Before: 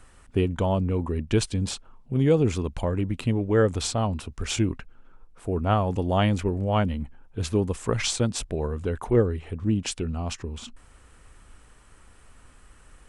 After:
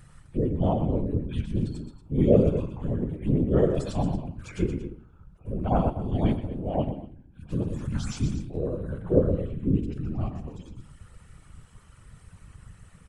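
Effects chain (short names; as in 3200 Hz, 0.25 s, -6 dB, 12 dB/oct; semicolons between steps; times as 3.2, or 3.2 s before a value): median-filter separation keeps harmonic; on a send: tapped delay 0.123/0.232 s -9/-13.5 dB; on the sum: shoebox room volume 550 m³, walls furnished, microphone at 0.62 m; whisperiser; 5.9–7.49 upward expander 1.5:1, over -33 dBFS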